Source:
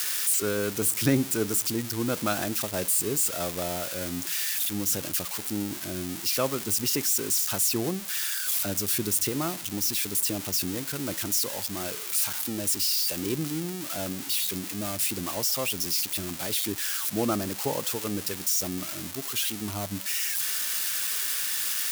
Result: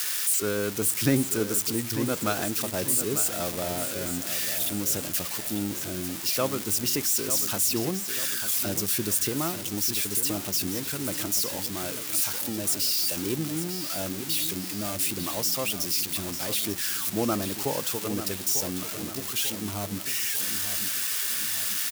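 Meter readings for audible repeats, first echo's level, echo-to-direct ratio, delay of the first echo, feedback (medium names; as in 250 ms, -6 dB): 4, -10.5 dB, -9.5 dB, 895 ms, 49%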